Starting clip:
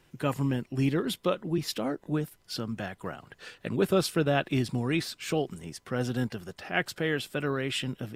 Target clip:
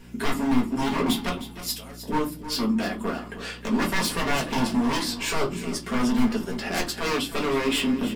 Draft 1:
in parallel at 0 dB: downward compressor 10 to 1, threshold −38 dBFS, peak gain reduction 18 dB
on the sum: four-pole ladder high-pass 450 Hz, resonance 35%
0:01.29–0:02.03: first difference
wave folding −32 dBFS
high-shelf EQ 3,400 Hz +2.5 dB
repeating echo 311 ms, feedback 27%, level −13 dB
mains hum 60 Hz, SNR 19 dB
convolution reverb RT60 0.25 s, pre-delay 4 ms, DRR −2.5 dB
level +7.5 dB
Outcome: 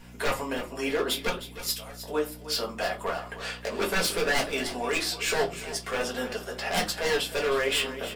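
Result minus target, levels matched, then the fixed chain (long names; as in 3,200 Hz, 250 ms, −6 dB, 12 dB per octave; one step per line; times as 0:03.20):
250 Hz band −10.0 dB
in parallel at 0 dB: downward compressor 10 to 1, threshold −38 dBFS, peak gain reduction 18 dB
on the sum: four-pole ladder high-pass 210 Hz, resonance 35%
0:01.29–0:02.03: first difference
wave folding −32 dBFS
high-shelf EQ 3,400 Hz +2.5 dB
repeating echo 311 ms, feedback 27%, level −13 dB
mains hum 60 Hz, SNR 19 dB
convolution reverb RT60 0.25 s, pre-delay 4 ms, DRR −2.5 dB
level +7.5 dB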